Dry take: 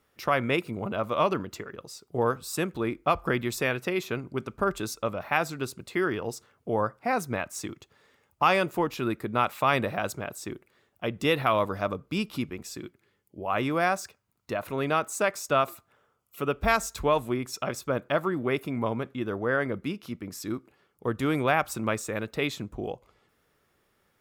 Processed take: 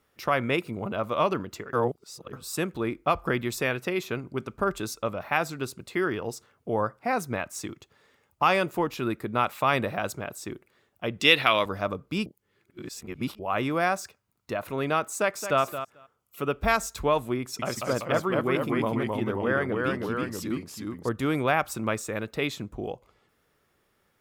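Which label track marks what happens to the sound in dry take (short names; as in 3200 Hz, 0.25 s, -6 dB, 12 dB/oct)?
1.730000	2.330000	reverse
11.200000	11.660000	weighting filter D
12.260000	13.390000	reverse
15.190000	15.620000	echo throw 0.22 s, feedback 10%, level -10.5 dB
17.410000	21.090000	echoes that change speed 0.18 s, each echo -1 st, echoes 2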